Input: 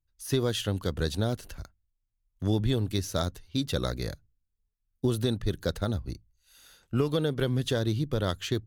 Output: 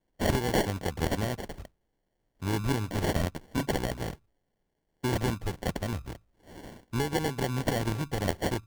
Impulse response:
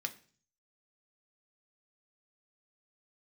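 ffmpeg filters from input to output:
-af "crystalizer=i=6:c=0,acrusher=samples=35:mix=1:aa=0.000001,volume=0.631"

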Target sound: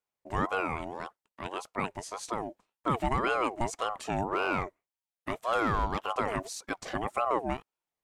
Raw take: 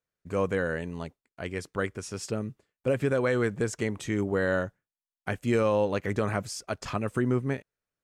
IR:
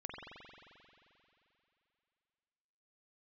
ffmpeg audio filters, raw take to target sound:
-filter_complex "[0:a]asettb=1/sr,asplit=3[s0][s1][s2];[s0]atrim=end=4.254[s3];[s1]atrim=start=4.25:end=6.04,asetpts=PTS-STARTPTS,afade=t=in:d=0.004:c=qsin,afade=t=out:st=1.786:d=0.004:c=qsin,aeval=exprs='clip(val(0),-1,0.0668)':c=same[s4];[s2]atrim=start=6.036[s5];[s3][s4]acrossfade=d=0.004:c1=hsin:c2=qsin[s6];[s6][s5]acrossfade=d=0.004:c1=qsin:c2=hsin,aeval=exprs='val(0)*sin(2*PI*710*n/s+710*0.35/1.8*sin(2*PI*1.8*n/s))':c=same"

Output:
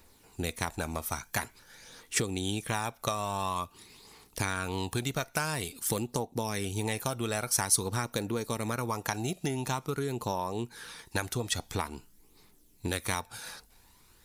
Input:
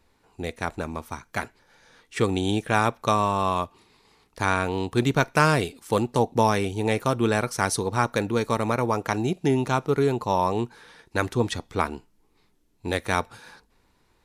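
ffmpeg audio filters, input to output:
-af "aphaser=in_gain=1:out_gain=1:delay=1.6:decay=0.36:speed=0.48:type=triangular,acompressor=threshold=0.0355:ratio=12,aemphasis=mode=production:type=75kf"

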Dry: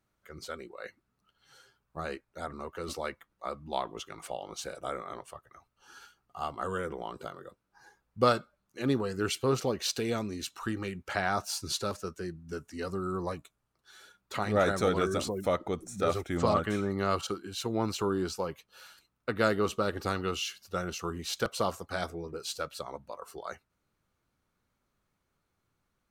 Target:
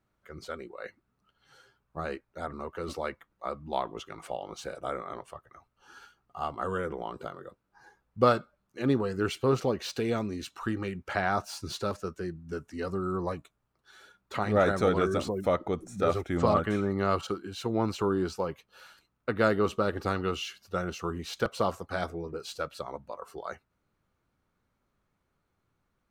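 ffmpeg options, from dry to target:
-filter_complex "[0:a]highshelf=f=3600:g=-9,acrossover=split=3500[s0][s1];[s1]asoftclip=type=tanh:threshold=0.0112[s2];[s0][s2]amix=inputs=2:normalize=0,volume=1.33"

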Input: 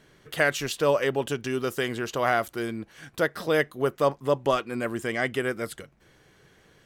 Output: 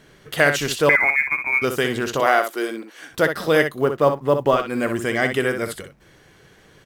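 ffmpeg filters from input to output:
-filter_complex "[0:a]asettb=1/sr,asplit=3[s0][s1][s2];[s0]atrim=end=0.894[s3];[s1]atrim=start=0.89:end=1.62,asetpts=PTS-STARTPTS,afade=t=in:d=0.004:c=qsin,afade=t=out:st=0.726:d=0.004:c=qsin,lowpass=f=2200:t=q:w=0.5098,lowpass=f=2200:t=q:w=0.6013,lowpass=f=2200:t=q:w=0.9,lowpass=f=2200:t=q:w=2.563,afreqshift=-2600[s4];[s2]atrim=start=1.616[s5];[s3][s4]acrossfade=d=0.004:c1=hsin:c2=qsin[s6];[s6][s5]acrossfade=d=0.004:c1=qsin:c2=hsin,asettb=1/sr,asplit=3[s7][s8][s9];[s7]atrim=end=2.204[s10];[s8]atrim=start=2.2:end=3.11,asetpts=PTS-STARTPTS,afade=t=in:d=0.004:c=qsin,afade=t=out:st=0.906:d=0.004:c=qsin,highpass=f=290:w=0.5412,highpass=f=290:w=1.3066[s11];[s9]atrim=start=3.106[s12];[s10][s11]acrossfade=d=0.004:c1=hsin:c2=qsin[s13];[s13][s12]acrossfade=d=0.004:c1=qsin:c2=hsin,asettb=1/sr,asplit=3[s14][s15][s16];[s14]atrim=end=3.814[s17];[s15]atrim=start=3.81:end=4.6,asetpts=PTS-STARTPTS,afade=t=in:d=0.004:c=qsin,afade=t=out:st=0.786:d=0.004:c=qsin,aemphasis=mode=reproduction:type=75kf[s18];[s16]atrim=start=4.596[s19];[s17][s18]acrossfade=d=0.004:c1=hsin:c2=qsin[s20];[s20][s19]acrossfade=d=0.004:c1=qsin:c2=hsin,aecho=1:1:20|62:0.141|0.398,acrusher=bits=9:mode=log:mix=0:aa=0.000001,volume=2"

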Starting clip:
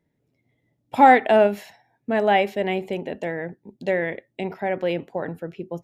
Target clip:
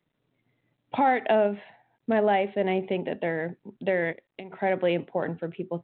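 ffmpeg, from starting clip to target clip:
-filter_complex "[0:a]highpass=f=100:w=0.5412,highpass=f=100:w=1.3066,asettb=1/sr,asplit=3[s0][s1][s2];[s0]atrim=end=1.354[s3];[s1]atrim=start=1.35:end=2.84,asetpts=PTS-STARTPTS,afade=t=in:d=0.004:c=qsin,afade=t=out:st=1.486:d=0.004:c=qsin,highshelf=f=2200:g=-7.5[s4];[s2]atrim=start=2.836[s5];[s3][s4]acrossfade=d=0.004:c1=hsin:c2=qsin[s6];[s6][s5]acrossfade=d=0.004:c1=qsin:c2=hsin,asplit=3[s7][s8][s9];[s7]afade=t=out:st=4.11:d=0.02[s10];[s8]acompressor=threshold=0.0141:ratio=16,afade=t=in:st=4.11:d=0.02,afade=t=out:st=4.52:d=0.02[s11];[s9]afade=t=in:st=4.52:d=0.02[s12];[s10][s11][s12]amix=inputs=3:normalize=0,alimiter=limit=0.211:level=0:latency=1:release=249" -ar 8000 -c:a adpcm_g726 -b:a 40k

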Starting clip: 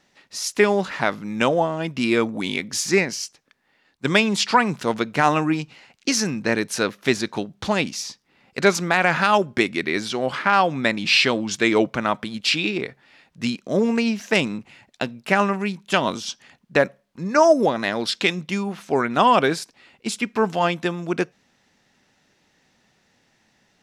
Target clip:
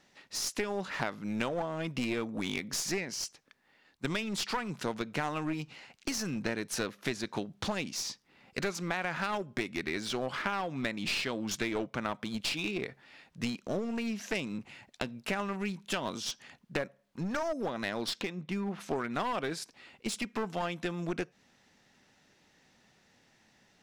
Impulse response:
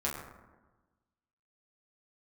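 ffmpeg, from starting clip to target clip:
-filter_complex "[0:a]acompressor=threshold=0.0447:ratio=6,asplit=3[s0][s1][s2];[s0]afade=t=out:st=18.2:d=0.02[s3];[s1]lowpass=f=1700:p=1,afade=t=in:st=18.2:d=0.02,afade=t=out:st=18.79:d=0.02[s4];[s2]afade=t=in:st=18.79:d=0.02[s5];[s3][s4][s5]amix=inputs=3:normalize=0,aeval=exprs='clip(val(0),-1,0.0299)':c=same,volume=0.75"

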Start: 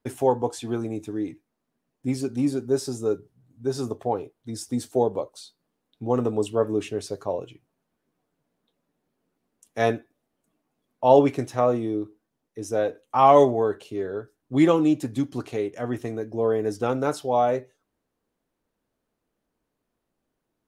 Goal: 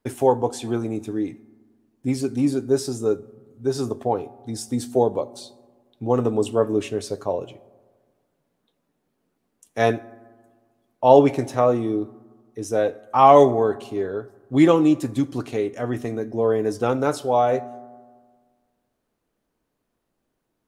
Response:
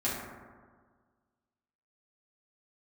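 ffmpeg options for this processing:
-filter_complex "[0:a]asplit=2[s0][s1];[1:a]atrim=start_sample=2205,highshelf=f=3900:g=10.5,adelay=10[s2];[s1][s2]afir=irnorm=-1:irlink=0,volume=0.0447[s3];[s0][s3]amix=inputs=2:normalize=0,volume=1.41"

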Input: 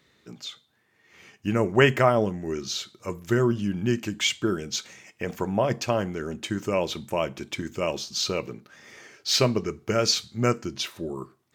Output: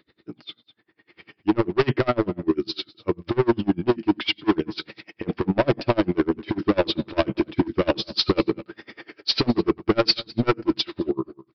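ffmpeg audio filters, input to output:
-filter_complex "[0:a]equalizer=f=320:w=3.4:g=12.5,dynaudnorm=f=240:g=7:m=3.76,aresample=11025,asoftclip=type=hard:threshold=0.158,aresample=44100,asplit=2[s0][s1];[s1]adelay=215.7,volume=0.112,highshelf=f=4000:g=-4.85[s2];[s0][s2]amix=inputs=2:normalize=0,aeval=exprs='val(0)*pow(10,-30*(0.5-0.5*cos(2*PI*10*n/s))/20)':c=same,volume=1.68"

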